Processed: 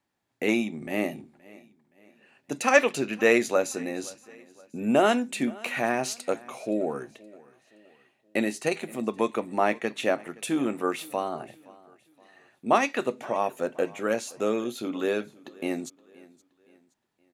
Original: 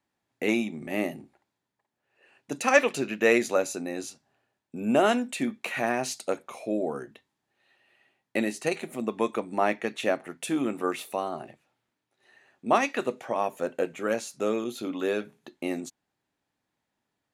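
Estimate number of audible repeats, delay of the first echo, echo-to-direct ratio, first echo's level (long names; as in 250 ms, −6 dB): 2, 521 ms, −21.5 dB, −22.5 dB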